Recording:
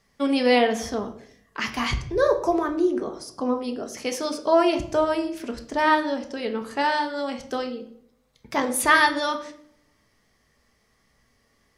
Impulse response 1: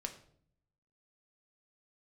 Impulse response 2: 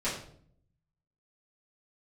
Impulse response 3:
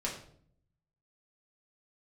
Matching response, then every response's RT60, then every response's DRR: 1; 0.60 s, 0.60 s, 0.60 s; 4.0 dB, -12.0 dB, -4.5 dB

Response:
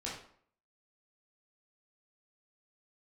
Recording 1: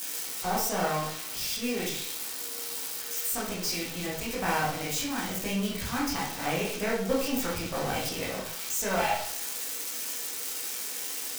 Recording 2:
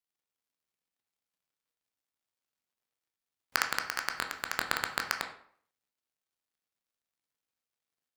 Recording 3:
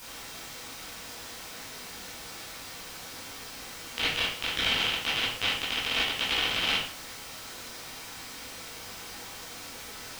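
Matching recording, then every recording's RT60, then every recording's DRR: 1; 0.60 s, 0.55 s, 0.60 s; -6.0 dB, 4.0 dB, -10.5 dB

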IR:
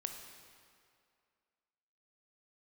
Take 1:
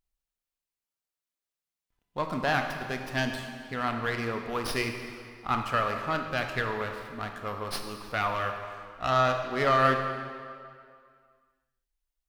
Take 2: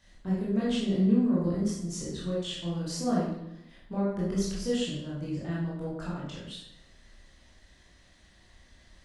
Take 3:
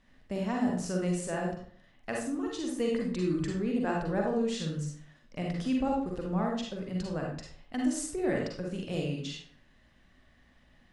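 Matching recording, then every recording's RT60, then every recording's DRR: 1; 2.3 s, 0.80 s, 0.55 s; 4.5 dB, -7.5 dB, -1.0 dB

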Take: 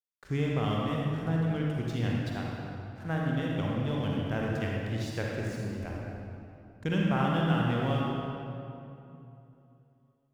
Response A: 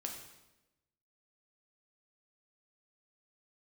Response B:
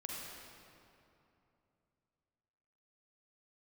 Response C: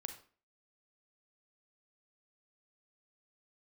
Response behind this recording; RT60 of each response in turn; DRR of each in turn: B; 1.0 s, 2.9 s, 0.40 s; 1.0 dB, -3.5 dB, 6.5 dB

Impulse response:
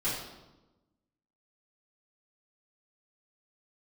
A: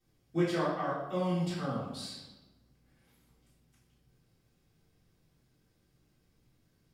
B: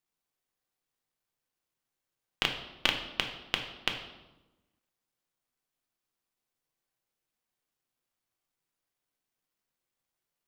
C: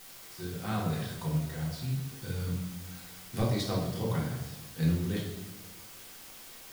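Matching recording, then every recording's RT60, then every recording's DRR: A; 1.1 s, 1.1 s, 1.1 s; -13.0 dB, 3.0 dB, -4.0 dB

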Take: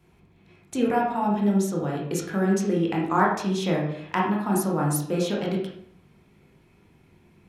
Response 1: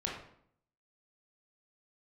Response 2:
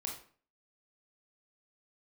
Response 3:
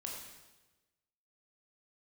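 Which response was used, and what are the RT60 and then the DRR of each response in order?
1; 0.65 s, 0.45 s, 1.1 s; -3.0 dB, -0.5 dB, -2.0 dB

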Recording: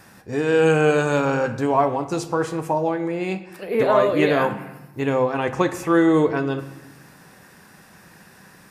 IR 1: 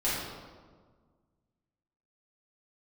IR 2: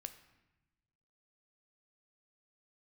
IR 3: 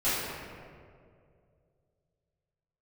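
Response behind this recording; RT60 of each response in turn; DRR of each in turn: 2; 1.6 s, 1.0 s, 2.3 s; -10.5 dB, 8.5 dB, -15.0 dB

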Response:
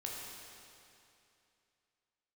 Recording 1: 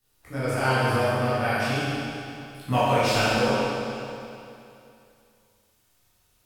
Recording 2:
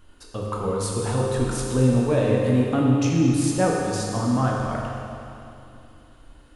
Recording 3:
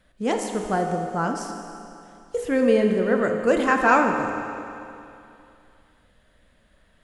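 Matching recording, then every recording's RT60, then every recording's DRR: 2; 2.7 s, 2.7 s, 2.7 s; -12.5 dB, -3.0 dB, 3.0 dB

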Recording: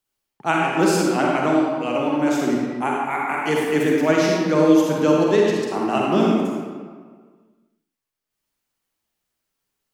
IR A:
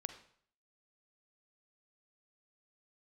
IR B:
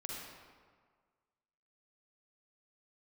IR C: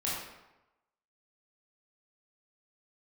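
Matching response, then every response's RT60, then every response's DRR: B; 0.60 s, 1.7 s, 1.0 s; 8.5 dB, -3.0 dB, -7.5 dB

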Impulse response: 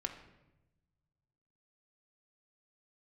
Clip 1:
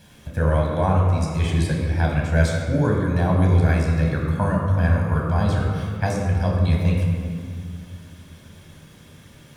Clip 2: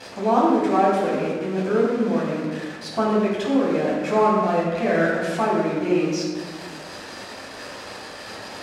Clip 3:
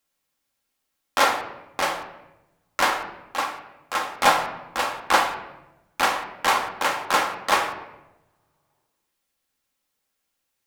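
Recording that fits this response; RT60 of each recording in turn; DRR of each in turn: 3; 2.3 s, 1.5 s, 0.95 s; -1.0 dB, -7.0 dB, 2.5 dB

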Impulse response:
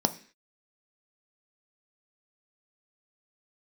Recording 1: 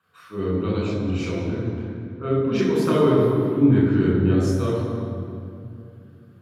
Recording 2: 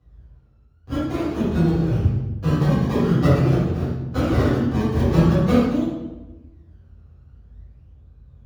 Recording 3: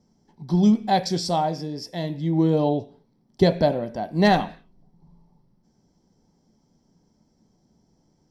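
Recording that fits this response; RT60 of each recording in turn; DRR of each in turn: 3; 2.6 s, 1.1 s, 0.45 s; -6.0 dB, -14.5 dB, 8.5 dB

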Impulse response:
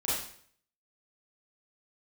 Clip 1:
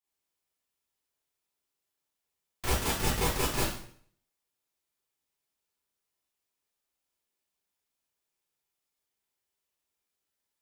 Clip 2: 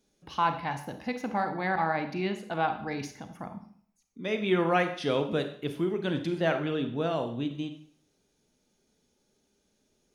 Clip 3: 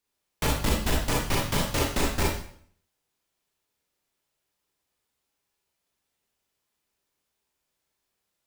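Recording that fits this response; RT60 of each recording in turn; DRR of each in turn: 1; 0.55 s, 0.55 s, 0.55 s; -9.5 dB, 7.0 dB, -3.0 dB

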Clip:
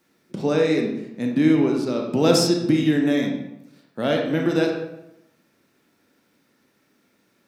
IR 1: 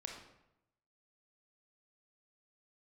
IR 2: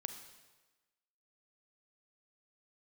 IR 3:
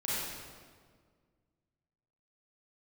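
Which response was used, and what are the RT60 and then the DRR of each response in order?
1; 0.85 s, 1.2 s, 1.8 s; 1.0 dB, 7.0 dB, -9.0 dB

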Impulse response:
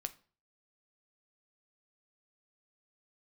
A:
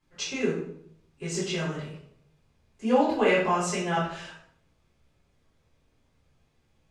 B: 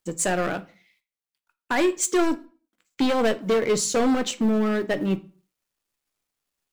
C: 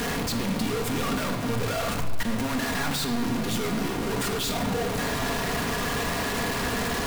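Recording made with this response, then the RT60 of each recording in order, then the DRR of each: B; 0.65 s, 0.40 s, 1.5 s; -10.0 dB, 9.5 dB, 2.0 dB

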